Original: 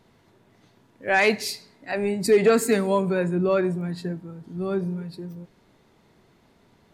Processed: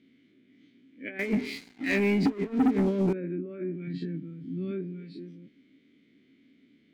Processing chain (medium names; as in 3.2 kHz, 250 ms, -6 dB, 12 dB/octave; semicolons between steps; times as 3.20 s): every event in the spectrogram widened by 60 ms; low-pass that closes with the level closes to 1.1 kHz, closed at -16 dBFS; 3.87–4.71 s: peaking EQ 140 Hz +12.5 dB 0.78 oct; compressor with a negative ratio -21 dBFS, ratio -0.5; vowel filter i; 1.19–3.13 s: waveshaping leveller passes 3; trim +3 dB